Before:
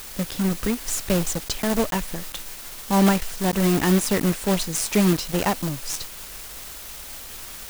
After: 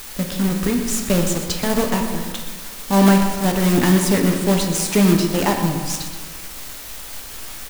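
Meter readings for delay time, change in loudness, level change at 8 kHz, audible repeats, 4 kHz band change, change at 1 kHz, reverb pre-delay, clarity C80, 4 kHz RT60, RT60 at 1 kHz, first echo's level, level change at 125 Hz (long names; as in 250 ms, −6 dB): 124 ms, +4.5 dB, +3.0 dB, 1, +3.5 dB, +4.0 dB, 7 ms, 6.5 dB, 0.95 s, 1.5 s, −12.5 dB, +5.0 dB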